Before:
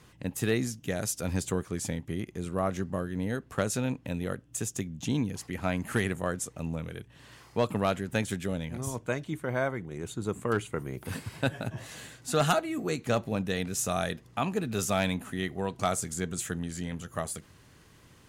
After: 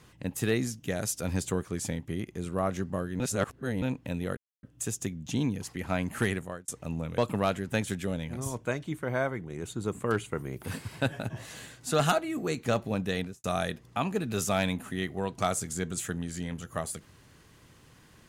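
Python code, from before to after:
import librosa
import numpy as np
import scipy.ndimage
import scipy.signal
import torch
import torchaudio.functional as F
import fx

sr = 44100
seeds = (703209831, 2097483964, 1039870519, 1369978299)

y = fx.studio_fade_out(x, sr, start_s=13.59, length_s=0.26)
y = fx.edit(y, sr, fx.reverse_span(start_s=3.2, length_s=0.62),
    fx.insert_silence(at_s=4.37, length_s=0.26),
    fx.fade_out_span(start_s=6.03, length_s=0.39),
    fx.cut(start_s=6.92, length_s=0.67), tone=tone)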